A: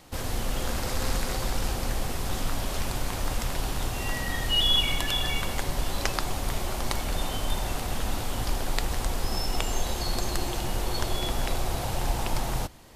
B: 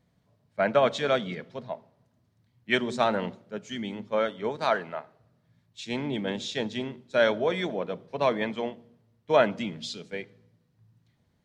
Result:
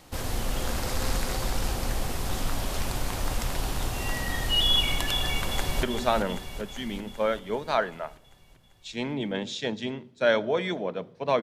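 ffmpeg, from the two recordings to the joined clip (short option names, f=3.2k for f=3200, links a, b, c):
-filter_complex "[0:a]apad=whole_dur=11.42,atrim=end=11.42,atrim=end=5.832[a];[1:a]atrim=start=2.758:end=8.35[b];[a][b]acrossfade=d=0.004:c1=hsin:c2=hsin,asplit=2[c][d];[d]afade=t=in:st=5.12:d=0.01,afade=t=out:st=5.83:d=0.01,aecho=0:1:390|780|1170|1560|1950|2340|2730|3120|3510:0.421697|0.274103|0.178167|0.115808|0.0752755|0.048929|0.0318039|0.0206725|0.0134371[e];[c][e]amix=inputs=2:normalize=0"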